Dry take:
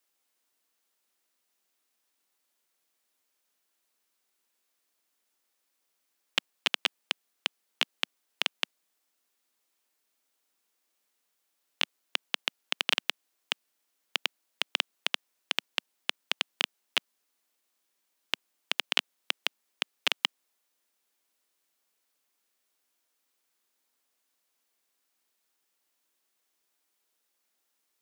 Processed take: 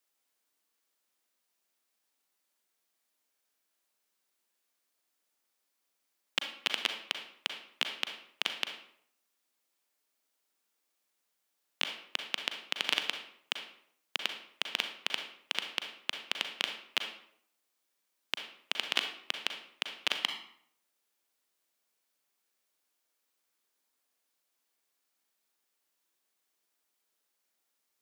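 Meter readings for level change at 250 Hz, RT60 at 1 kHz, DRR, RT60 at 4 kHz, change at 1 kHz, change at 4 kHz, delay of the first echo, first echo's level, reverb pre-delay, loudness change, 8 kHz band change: −2.5 dB, 0.65 s, 5.0 dB, 0.45 s, −2.0 dB, −2.5 dB, no echo audible, no echo audible, 35 ms, −2.5 dB, −2.5 dB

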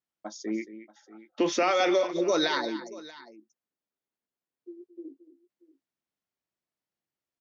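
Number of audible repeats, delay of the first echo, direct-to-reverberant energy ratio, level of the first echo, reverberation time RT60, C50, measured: 2, 223 ms, no reverb audible, −14.0 dB, no reverb audible, no reverb audible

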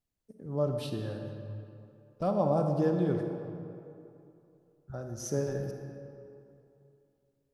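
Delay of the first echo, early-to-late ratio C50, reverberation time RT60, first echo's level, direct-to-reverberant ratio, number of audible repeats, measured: no echo audible, 4.5 dB, 2.8 s, no echo audible, 4.0 dB, no echo audible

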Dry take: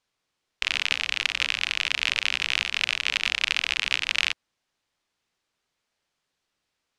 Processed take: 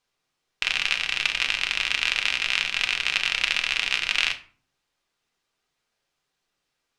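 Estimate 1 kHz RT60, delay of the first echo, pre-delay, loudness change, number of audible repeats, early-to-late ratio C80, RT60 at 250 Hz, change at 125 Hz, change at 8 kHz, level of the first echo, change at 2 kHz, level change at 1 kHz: 0.45 s, no echo audible, 3 ms, +1.0 dB, no echo audible, 19.0 dB, 0.70 s, can't be measured, +1.0 dB, no echo audible, +1.5 dB, +2.0 dB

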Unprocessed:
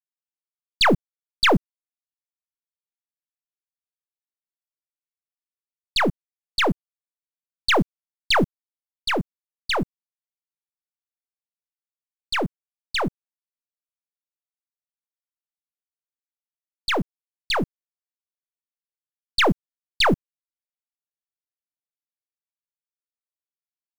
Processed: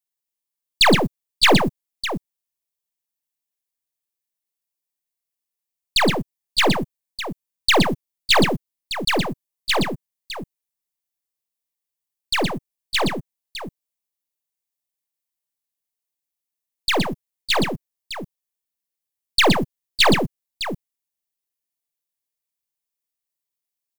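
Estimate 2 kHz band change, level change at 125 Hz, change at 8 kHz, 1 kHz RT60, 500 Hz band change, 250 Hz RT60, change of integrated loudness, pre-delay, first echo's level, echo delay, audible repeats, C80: +3.0 dB, +3.5 dB, +8.5 dB, no reverb audible, +3.5 dB, no reverb audible, +3.0 dB, no reverb audible, −14.5 dB, 49 ms, 3, no reverb audible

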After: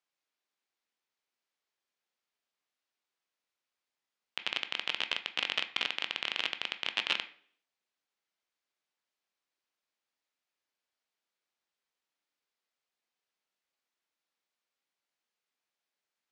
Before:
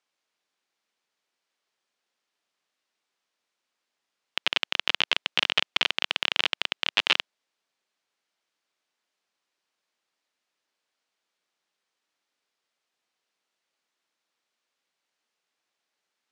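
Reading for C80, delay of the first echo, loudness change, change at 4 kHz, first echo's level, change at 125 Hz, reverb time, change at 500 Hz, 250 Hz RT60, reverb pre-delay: 17.5 dB, no echo audible, −8.0 dB, −8.0 dB, no echo audible, can't be measured, 0.55 s, −8.0 dB, 0.60 s, 12 ms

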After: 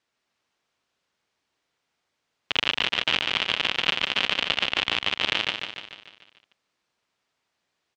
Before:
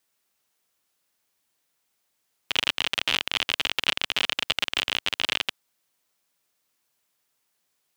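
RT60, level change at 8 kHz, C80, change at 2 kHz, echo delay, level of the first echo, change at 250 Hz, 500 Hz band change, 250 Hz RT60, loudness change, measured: no reverb audible, −6.0 dB, no reverb audible, +2.0 dB, 147 ms, −6.0 dB, +3.5 dB, +3.5 dB, no reverb audible, +1.5 dB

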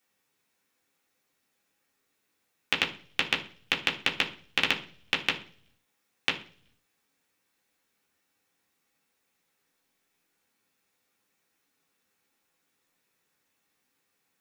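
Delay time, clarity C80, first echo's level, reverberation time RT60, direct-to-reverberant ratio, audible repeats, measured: no echo audible, 17.0 dB, no echo audible, 0.45 s, −3.0 dB, no echo audible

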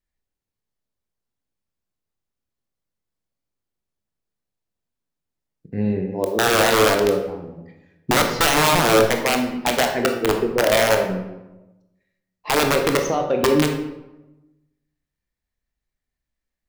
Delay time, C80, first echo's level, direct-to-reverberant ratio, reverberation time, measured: no echo audible, 9.0 dB, no echo audible, 3.5 dB, 1.0 s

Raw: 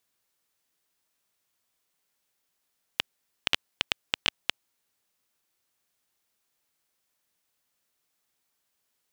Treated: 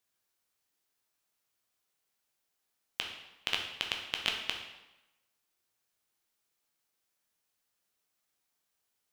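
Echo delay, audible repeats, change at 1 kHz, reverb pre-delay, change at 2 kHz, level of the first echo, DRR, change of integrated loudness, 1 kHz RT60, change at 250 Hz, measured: no echo audible, no echo audible, −3.5 dB, 9 ms, −4.0 dB, no echo audible, 1.5 dB, −4.0 dB, 1.0 s, −4.5 dB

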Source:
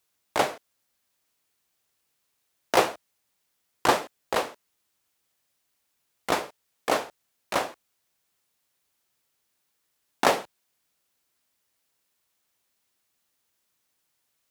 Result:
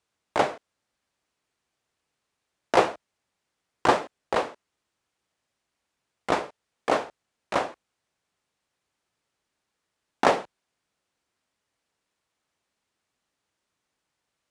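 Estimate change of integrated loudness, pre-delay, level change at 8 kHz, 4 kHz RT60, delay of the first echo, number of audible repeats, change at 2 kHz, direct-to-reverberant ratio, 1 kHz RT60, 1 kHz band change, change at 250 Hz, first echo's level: +0.5 dB, no reverb audible, −6.5 dB, no reverb audible, no echo audible, no echo audible, −0.5 dB, no reverb audible, no reverb audible, +1.0 dB, +2.0 dB, no echo audible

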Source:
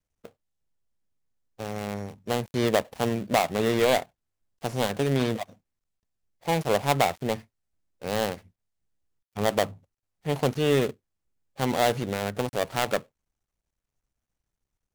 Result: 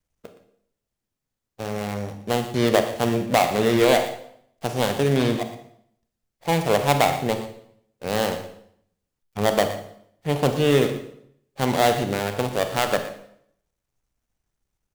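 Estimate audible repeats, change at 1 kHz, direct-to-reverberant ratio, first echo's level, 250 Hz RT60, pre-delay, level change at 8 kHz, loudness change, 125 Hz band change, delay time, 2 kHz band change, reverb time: 1, +4.5 dB, 6.5 dB, −14.5 dB, 0.75 s, 29 ms, +4.5 dB, +4.5 dB, +4.5 dB, 118 ms, +4.5 dB, 0.70 s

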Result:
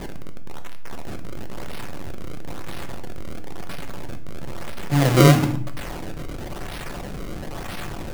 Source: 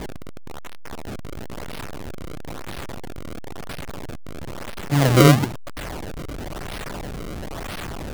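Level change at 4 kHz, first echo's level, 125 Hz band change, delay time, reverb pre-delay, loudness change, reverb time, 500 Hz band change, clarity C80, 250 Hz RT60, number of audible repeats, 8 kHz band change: −1.0 dB, no echo audible, 0.0 dB, no echo audible, 5 ms, +1.0 dB, 0.60 s, −1.0 dB, 14.5 dB, 1.0 s, no echo audible, −1.0 dB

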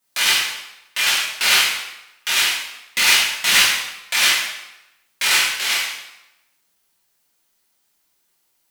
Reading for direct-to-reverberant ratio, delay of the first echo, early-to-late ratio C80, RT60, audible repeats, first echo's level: −9.0 dB, no echo audible, 4.0 dB, 0.95 s, no echo audible, no echo audible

